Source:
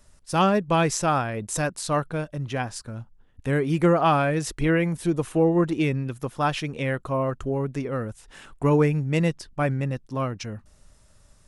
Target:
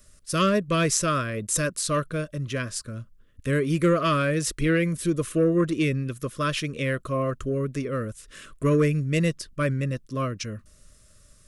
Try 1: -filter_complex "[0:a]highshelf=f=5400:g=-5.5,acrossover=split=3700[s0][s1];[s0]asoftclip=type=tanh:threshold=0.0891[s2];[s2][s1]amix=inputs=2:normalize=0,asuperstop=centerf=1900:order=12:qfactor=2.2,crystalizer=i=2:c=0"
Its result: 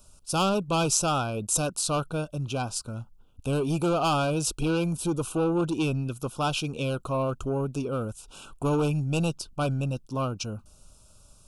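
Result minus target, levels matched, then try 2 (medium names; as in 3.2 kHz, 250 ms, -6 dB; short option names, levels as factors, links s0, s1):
saturation: distortion +12 dB; 2 kHz band -4.5 dB
-filter_complex "[0:a]highshelf=f=5400:g=-5.5,acrossover=split=3700[s0][s1];[s0]asoftclip=type=tanh:threshold=0.266[s2];[s2][s1]amix=inputs=2:normalize=0,asuperstop=centerf=820:order=12:qfactor=2.2,crystalizer=i=2:c=0"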